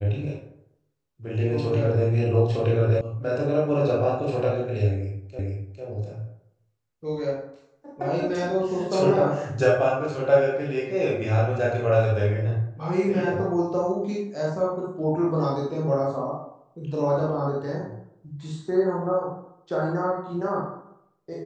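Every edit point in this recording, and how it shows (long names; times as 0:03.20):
0:03.01: cut off before it has died away
0:05.39: the same again, the last 0.45 s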